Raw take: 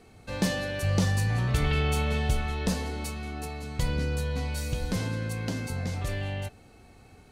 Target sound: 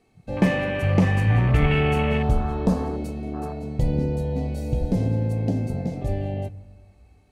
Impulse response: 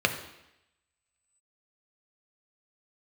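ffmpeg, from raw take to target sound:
-filter_complex "[0:a]afwtdn=0.02,asplit=2[a][b];[1:a]atrim=start_sample=2205,asetrate=24255,aresample=44100[c];[b][c]afir=irnorm=-1:irlink=0,volume=-24dB[d];[a][d]amix=inputs=2:normalize=0,volume=6dB"

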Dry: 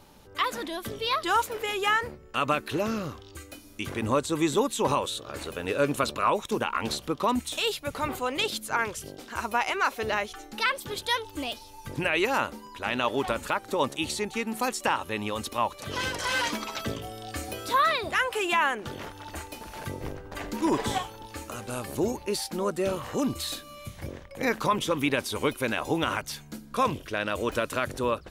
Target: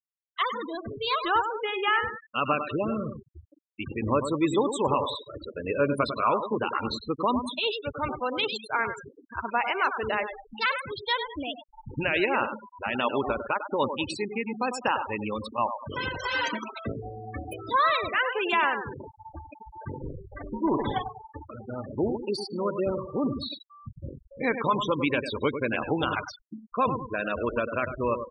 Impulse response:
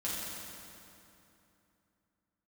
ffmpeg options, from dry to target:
-af "aecho=1:1:100|200|300|400|500:0.398|0.163|0.0669|0.0274|0.0112,afftfilt=real='re*gte(hypot(re,im),0.0501)':imag='im*gte(hypot(re,im),0.0501)':win_size=1024:overlap=0.75"

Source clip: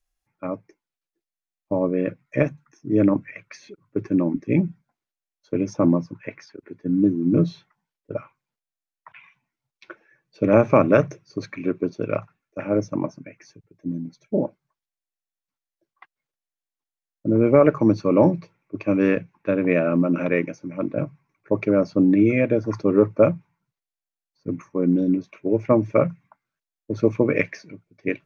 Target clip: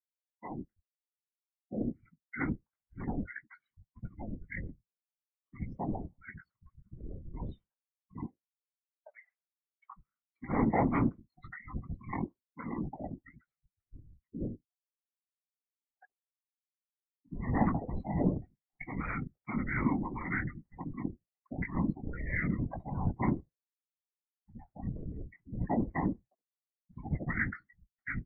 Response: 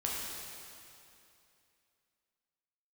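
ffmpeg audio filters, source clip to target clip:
-filter_complex "[0:a]asettb=1/sr,asplit=3[a][b][c];[a]atrim=end=1.824[d];[b]atrim=start=1.82:end=2.22,asetpts=PTS-STARTPTS,afade=t=in:d=0.004:c=qsin,afade=t=out:st=0.396:d=0.004:c=qsin,aderivative[e];[c]atrim=start=2.216[f];[d][e]acrossfade=d=0.004:c1=hsin:c2=qsin[g];[g][f]acrossfade=d=0.004:c1=qsin:c2=hsin,acrossover=split=660[h][i];[h]adelay=70[j];[j][i]amix=inputs=2:normalize=0,asplit=2[k][l];[l]asoftclip=type=tanh:threshold=-15.5dB,volume=-4.5dB[m];[k][m]amix=inputs=2:normalize=0,flanger=delay=17:depth=4.7:speed=0.3,afftfilt=real='hypot(re,im)*cos(2*PI*random(0))':imag='hypot(re,im)*sin(2*PI*random(1))':win_size=512:overlap=0.75,acrossover=split=220[n][o];[n]asoftclip=type=hard:threshold=-28.5dB[p];[p][o]amix=inputs=2:normalize=0,afftdn=nr=29:nf=-42,highpass=f=500:t=q:w=0.5412,highpass=f=500:t=q:w=1.307,lowpass=f=3k:t=q:w=0.5176,lowpass=f=3k:t=q:w=0.7071,lowpass=f=3k:t=q:w=1.932,afreqshift=-360"

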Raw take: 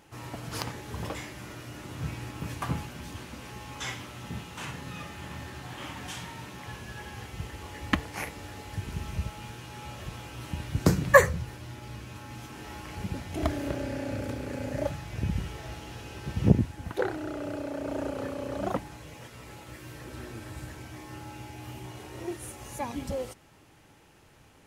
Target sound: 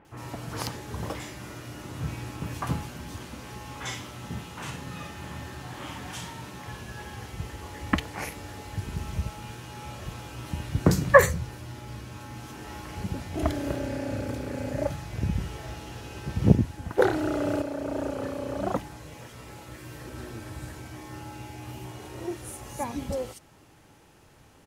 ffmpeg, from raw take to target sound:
-filter_complex "[0:a]acrossover=split=2400[a][b];[b]adelay=50[c];[a][c]amix=inputs=2:normalize=0,asettb=1/sr,asplit=3[d][e][f];[d]atrim=end=16.984[g];[e]atrim=start=16.98:end=17.62,asetpts=PTS-STARTPTS,afade=t=in:d=0.004:c=qsin,afade=t=out:st=0.636:d=0.004:c=qsin,acontrast=48[h];[f]atrim=start=17.616[i];[g][h]acrossfade=d=0.004:c1=hsin:c2=qsin[j];[j][i]acrossfade=d=0.004:c1=qsin:c2=hsin,volume=2dB"

